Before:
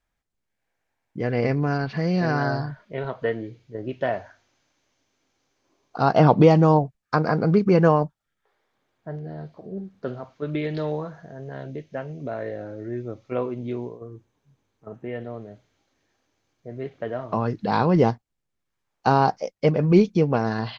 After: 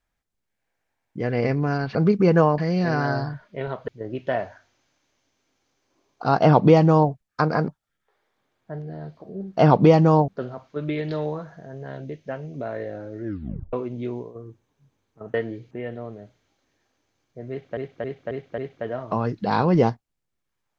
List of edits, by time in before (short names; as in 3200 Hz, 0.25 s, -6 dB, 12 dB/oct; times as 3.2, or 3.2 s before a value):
3.25–3.62 move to 15
6.14–6.85 copy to 9.94
7.42–8.05 move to 1.95
12.9 tape stop 0.49 s
16.79–17.06 loop, 5 plays